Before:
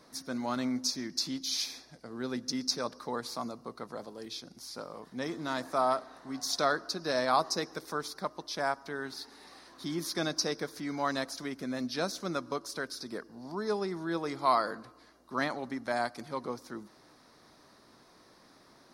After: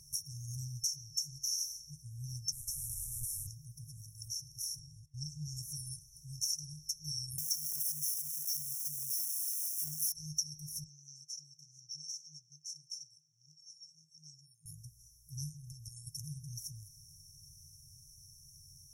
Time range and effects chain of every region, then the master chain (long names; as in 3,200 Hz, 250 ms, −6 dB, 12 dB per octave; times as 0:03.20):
0:02.52–0:03.47: linear delta modulator 64 kbit/s, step −32.5 dBFS + inverse Chebyshev band-stop filter 350–2,800 Hz, stop band 60 dB
0:04.79–0:05.57: noise gate −50 dBFS, range −20 dB + high-frequency loss of the air 52 metres
0:07.38–0:10.12: spike at every zero crossing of −29 dBFS + high-pass filter 130 Hz 24 dB per octave
0:10.84–0:14.66: high-pass filter 260 Hz 24 dB per octave + high-frequency loss of the air 160 metres
0:15.49–0:16.07: parametric band 800 Hz −13.5 dB 0.34 octaves + downward compressor 3 to 1, threshold −40 dBFS
whole clip: brick-wall band-stop 160–5,400 Hz; EQ curve with evenly spaced ripples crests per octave 0.86, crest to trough 8 dB; downward compressor 2.5 to 1, threshold −50 dBFS; level +12 dB